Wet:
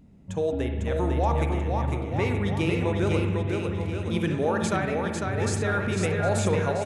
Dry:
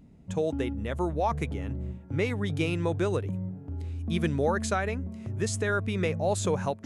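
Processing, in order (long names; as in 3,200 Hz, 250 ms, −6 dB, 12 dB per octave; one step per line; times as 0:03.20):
bouncing-ball delay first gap 500 ms, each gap 0.85×, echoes 5
spring reverb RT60 1.2 s, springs 40/55 ms, chirp 60 ms, DRR 4.5 dB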